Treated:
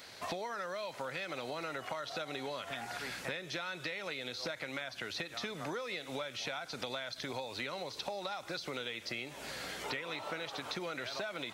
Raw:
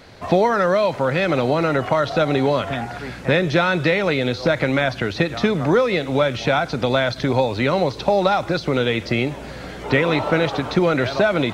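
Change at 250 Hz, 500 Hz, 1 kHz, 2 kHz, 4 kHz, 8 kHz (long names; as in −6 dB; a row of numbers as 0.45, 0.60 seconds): −25.0 dB, −23.0 dB, −19.5 dB, −17.0 dB, −12.0 dB, can't be measured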